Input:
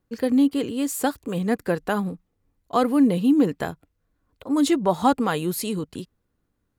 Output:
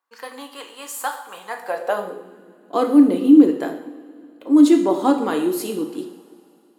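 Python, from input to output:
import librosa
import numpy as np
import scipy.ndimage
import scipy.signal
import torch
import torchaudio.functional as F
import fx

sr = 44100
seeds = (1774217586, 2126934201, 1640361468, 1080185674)

y = fx.rev_double_slope(x, sr, seeds[0], early_s=0.65, late_s=2.9, knee_db=-18, drr_db=3.5)
y = fx.filter_sweep_highpass(y, sr, from_hz=1000.0, to_hz=320.0, start_s=1.49, end_s=2.38, q=3.2)
y = F.gain(torch.from_numpy(y), -3.0).numpy()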